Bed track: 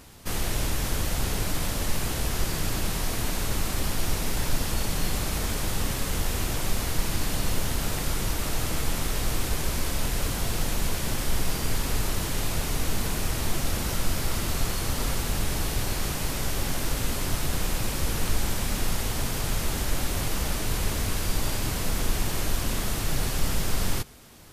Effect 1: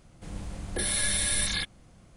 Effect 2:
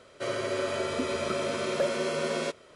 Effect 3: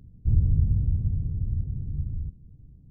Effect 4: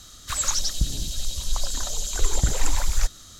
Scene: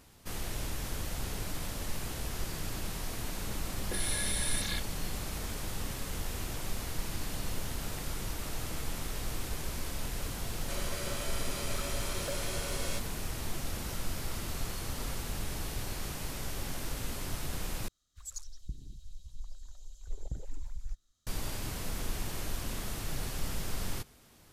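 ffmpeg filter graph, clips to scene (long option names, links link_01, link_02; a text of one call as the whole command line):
ffmpeg -i bed.wav -i cue0.wav -i cue1.wav -i cue2.wav -i cue3.wav -filter_complex "[0:a]volume=-9.5dB[link_01];[2:a]aemphasis=mode=production:type=riaa[link_02];[4:a]afwtdn=0.0447[link_03];[link_01]asplit=2[link_04][link_05];[link_04]atrim=end=17.884[link_06];[link_03]atrim=end=3.39,asetpts=PTS-STARTPTS,volume=-16.5dB[link_07];[link_05]atrim=start=21.266[link_08];[1:a]atrim=end=2.16,asetpts=PTS-STARTPTS,volume=-7dB,afade=type=in:duration=0.004:curve=hsin,afade=type=out:start_time=2.156:duration=0.004:curve=hsin,adelay=3150[link_09];[link_02]atrim=end=2.75,asetpts=PTS-STARTPTS,volume=-10.5dB,afade=type=in:duration=0.004:curve=hsin,afade=type=out:start_time=2.746:duration=0.004:curve=hsin,adelay=10480[link_10];[link_06][link_07]acrossfade=duration=0.004:curve1=hsin:curve2=hsin[link_11];[link_11][link_08]acrossfade=duration=0.004:curve1=hsin:curve2=hsin[link_12];[link_12][link_09][link_10]amix=inputs=3:normalize=0" out.wav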